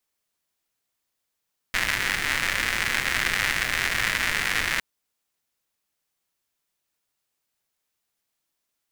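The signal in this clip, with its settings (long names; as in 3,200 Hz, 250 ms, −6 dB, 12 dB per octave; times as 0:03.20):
rain-like ticks over hiss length 3.06 s, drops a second 190, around 1,900 Hz, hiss −9.5 dB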